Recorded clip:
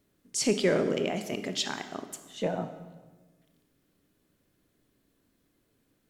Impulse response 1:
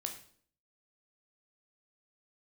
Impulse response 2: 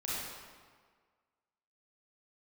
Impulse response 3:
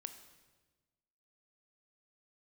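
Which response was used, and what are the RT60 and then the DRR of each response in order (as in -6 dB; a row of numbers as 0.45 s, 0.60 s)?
3; 0.55 s, 1.7 s, 1.3 s; 3.0 dB, -8.5 dB, 8.5 dB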